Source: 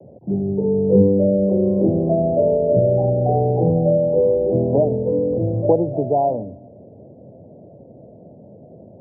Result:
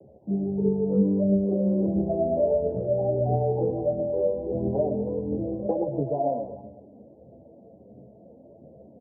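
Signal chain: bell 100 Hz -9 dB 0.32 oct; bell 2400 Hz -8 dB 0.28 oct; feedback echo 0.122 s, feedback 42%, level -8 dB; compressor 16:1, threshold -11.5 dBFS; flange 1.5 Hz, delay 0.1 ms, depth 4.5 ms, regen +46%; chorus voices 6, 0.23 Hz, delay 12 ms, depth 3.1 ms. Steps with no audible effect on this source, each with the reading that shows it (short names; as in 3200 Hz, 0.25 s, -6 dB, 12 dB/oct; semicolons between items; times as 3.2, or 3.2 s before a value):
bell 2400 Hz: input band ends at 850 Hz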